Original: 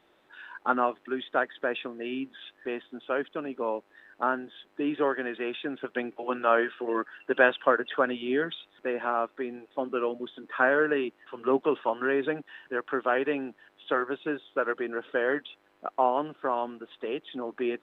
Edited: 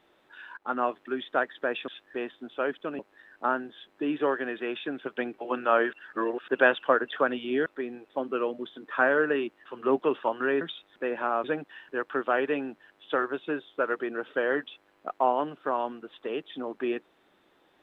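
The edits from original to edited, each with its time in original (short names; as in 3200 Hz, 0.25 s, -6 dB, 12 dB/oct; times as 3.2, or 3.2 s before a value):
0.57–0.9 fade in, from -13.5 dB
1.88–2.39 cut
3.5–3.77 cut
6.71–7.26 reverse
8.44–9.27 move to 12.22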